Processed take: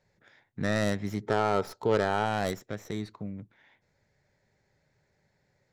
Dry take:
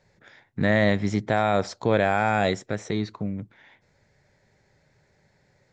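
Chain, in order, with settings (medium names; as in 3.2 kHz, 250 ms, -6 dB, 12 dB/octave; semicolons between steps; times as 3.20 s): tracing distortion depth 0.14 ms; 1.21–2.24 s: small resonant body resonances 420/890/1300 Hz, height 13 dB -> 9 dB; trim -8 dB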